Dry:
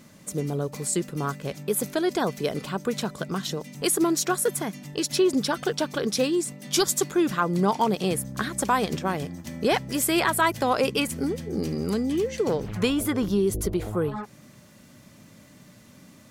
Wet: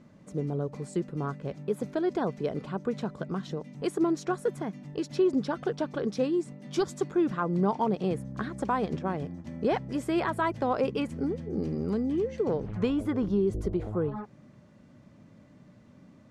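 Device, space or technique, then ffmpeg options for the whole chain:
through cloth: -af "lowpass=7.1k,highshelf=f=2k:g=-16,volume=-2.5dB"

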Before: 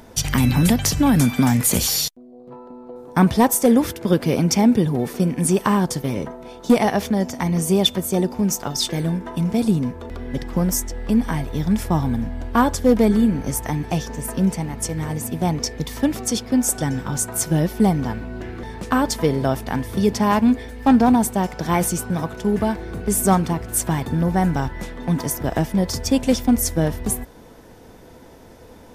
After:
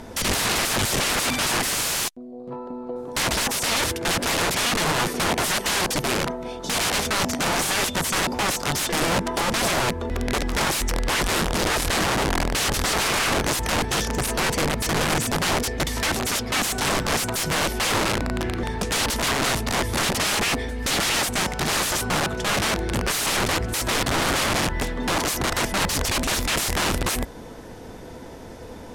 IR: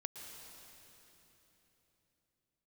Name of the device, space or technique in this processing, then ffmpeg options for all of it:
overflowing digital effects unit: -af "aeval=exprs='(mod(13.3*val(0)+1,2)-1)/13.3':c=same,lowpass=11k,volume=5.5dB"

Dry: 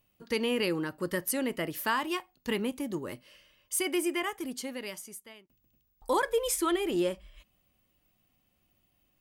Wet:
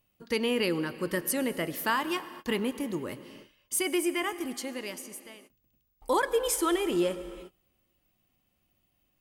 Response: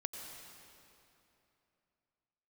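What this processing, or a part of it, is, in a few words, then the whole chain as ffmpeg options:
keyed gated reverb: -filter_complex "[0:a]asplit=3[a][b][c];[1:a]atrim=start_sample=2205[d];[b][d]afir=irnorm=-1:irlink=0[e];[c]apad=whole_len=406132[f];[e][f]sidechaingate=range=-33dB:threshold=-59dB:ratio=16:detection=peak,volume=-6dB[g];[a][g]amix=inputs=2:normalize=0,volume=-1.5dB"

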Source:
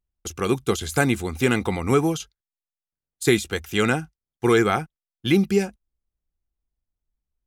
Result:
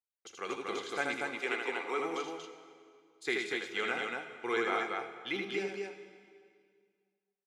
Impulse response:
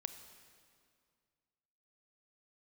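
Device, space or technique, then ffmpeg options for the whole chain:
station announcement: -filter_complex "[0:a]asettb=1/sr,asplit=3[a][b][c];[a]atrim=end=1.164[d];[b]atrim=start=1.16:end=2,asetpts=PTS-STARTPTS,afade=t=in:d=0.004:c=qsin,afade=t=out:st=0.836:d=0.004:c=qsin,highpass=f=280:w=0.5412,highpass=f=280:w=1.3066[e];[c]atrim=start=1.996[f];[d][e]acrossfade=d=0.004:c1=hsin:c2=qsin[g];[g][f]acrossfade=d=0.004:c1=qsin:c2=hsin,highpass=500,lowpass=4.6k,equalizer=f=2.1k:t=o:w=0.32:g=4.5,aecho=1:1:78.72|236.2:0.631|0.708[h];[1:a]atrim=start_sample=2205[i];[h][i]afir=irnorm=-1:irlink=0,volume=-9dB"

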